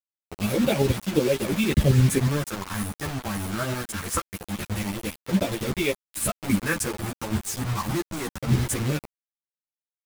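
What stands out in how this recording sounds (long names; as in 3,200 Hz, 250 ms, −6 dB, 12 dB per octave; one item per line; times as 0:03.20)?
phaser sweep stages 4, 0.23 Hz, lowest notch 480–1,200 Hz
tremolo saw up 11 Hz, depth 60%
a quantiser's noise floor 6 bits, dither none
a shimmering, thickened sound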